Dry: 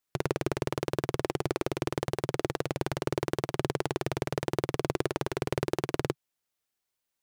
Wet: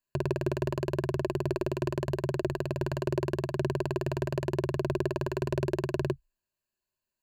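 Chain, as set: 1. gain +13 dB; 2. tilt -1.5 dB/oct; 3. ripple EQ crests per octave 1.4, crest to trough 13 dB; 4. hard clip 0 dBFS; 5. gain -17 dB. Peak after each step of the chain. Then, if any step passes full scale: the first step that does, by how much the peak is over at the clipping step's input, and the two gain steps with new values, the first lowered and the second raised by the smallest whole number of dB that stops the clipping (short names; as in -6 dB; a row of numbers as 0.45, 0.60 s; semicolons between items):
+2.0, +3.5, +4.0, 0.0, -17.0 dBFS; step 1, 4.0 dB; step 1 +9 dB, step 5 -13 dB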